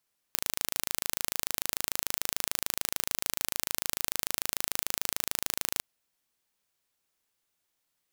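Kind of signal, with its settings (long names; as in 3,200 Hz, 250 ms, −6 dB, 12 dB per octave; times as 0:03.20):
impulse train 26.8 per second, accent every 0, −1.5 dBFS 5.45 s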